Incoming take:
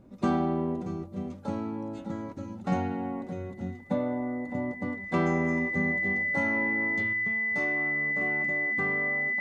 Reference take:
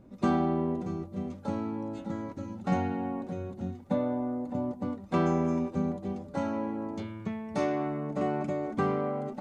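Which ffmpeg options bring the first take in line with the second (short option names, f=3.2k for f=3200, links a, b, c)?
-af "bandreject=f=2k:w=30,asetnsamples=n=441:p=0,asendcmd='7.13 volume volume 6.5dB',volume=0dB"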